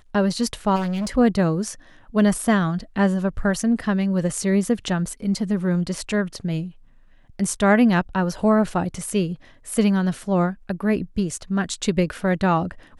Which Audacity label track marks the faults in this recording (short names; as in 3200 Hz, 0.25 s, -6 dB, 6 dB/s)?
0.750000	1.170000	clipped -22.5 dBFS